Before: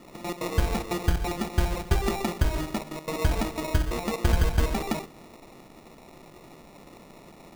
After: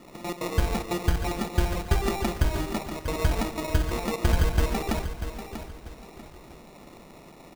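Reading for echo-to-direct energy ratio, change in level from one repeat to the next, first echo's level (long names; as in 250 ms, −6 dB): −9.5 dB, −10.0 dB, −10.0 dB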